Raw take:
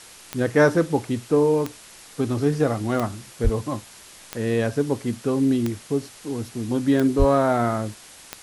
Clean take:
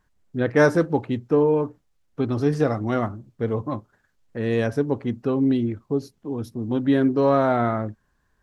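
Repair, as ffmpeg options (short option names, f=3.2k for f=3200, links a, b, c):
-filter_complex "[0:a]adeclick=t=4,asplit=3[a][b][c];[a]afade=t=out:st=3.43:d=0.02[d];[b]highpass=f=140:w=0.5412,highpass=f=140:w=1.3066,afade=t=in:st=3.43:d=0.02,afade=t=out:st=3.55:d=0.02[e];[c]afade=t=in:st=3.55:d=0.02[f];[d][e][f]amix=inputs=3:normalize=0,asplit=3[g][h][i];[g]afade=t=out:st=7.18:d=0.02[j];[h]highpass=f=140:w=0.5412,highpass=f=140:w=1.3066,afade=t=in:st=7.18:d=0.02,afade=t=out:st=7.3:d=0.02[k];[i]afade=t=in:st=7.3:d=0.02[l];[j][k][l]amix=inputs=3:normalize=0,afwtdn=0.0071"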